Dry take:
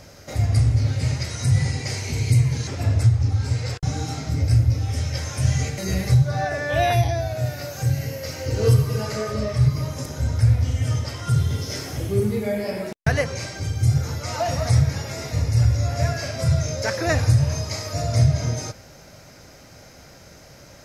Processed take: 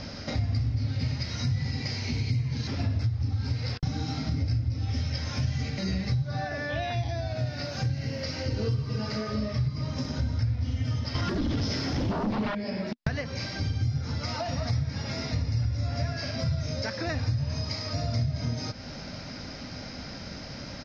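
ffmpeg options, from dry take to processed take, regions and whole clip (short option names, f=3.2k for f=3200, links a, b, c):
-filter_complex "[0:a]asettb=1/sr,asplit=3[a][b][c];[a]atrim=end=11.154[d];[b]atrim=start=11.15:end=12.55,asetpts=PTS-STARTPTS,afade=t=in:d=0.004:c=qsin,afade=t=out:st=1.396:d=0.004:c=qsin,equalizer=f=4.8k:w=0.37:g=-3.5,acompressor=threshold=-21dB:ratio=2.5:attack=3.2:release=140:knee=1:detection=peak,aeval=exprs='0.178*sin(PI/2*3.55*val(0)/0.178)':c=same[e];[c]atrim=start=12.546[f];[d][e]acrossfade=d=0.004:c1=hsin:c2=qsin[g];[g][f]acrossfade=d=0.004:c1=qsin:c2=hsin,firequalizer=gain_entry='entry(140,0);entry(240,9);entry(360,-1);entry(920,4);entry(5100,10);entry(8200,-25)':delay=0.05:min_phase=1,acompressor=threshold=-33dB:ratio=5,lowshelf=f=390:g=7"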